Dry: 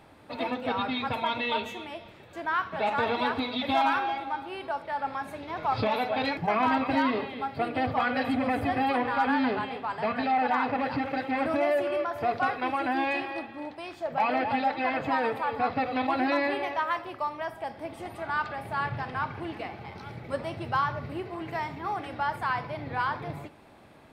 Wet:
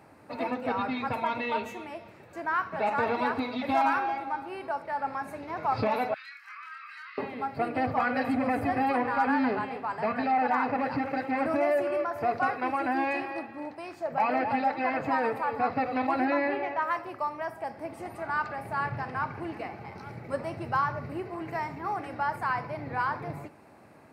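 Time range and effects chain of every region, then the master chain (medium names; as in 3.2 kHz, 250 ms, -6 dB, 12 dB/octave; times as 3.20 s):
6.14–7.18 s: Chebyshev high-pass 1.2 kHz, order 6 + compression 4:1, threshold -43 dBFS + doubling 27 ms -4.5 dB
16.25–16.82 s: low-pass 3.6 kHz + band-stop 1.1 kHz, Q 14
whole clip: high-pass 86 Hz; peaking EQ 3.4 kHz -14 dB 0.41 oct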